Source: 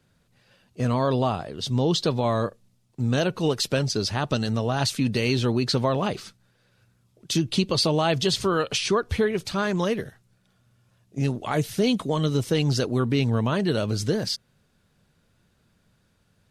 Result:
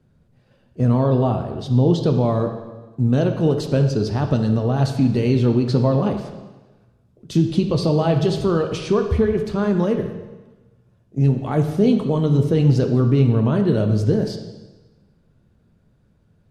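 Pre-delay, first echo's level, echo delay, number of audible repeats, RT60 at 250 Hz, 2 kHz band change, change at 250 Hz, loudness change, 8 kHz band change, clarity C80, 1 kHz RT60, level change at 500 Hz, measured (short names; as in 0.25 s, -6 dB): 6 ms, none, none, none, 1.2 s, -4.5 dB, +7.0 dB, +5.5 dB, -9.0 dB, 9.0 dB, 1.2 s, +5.0 dB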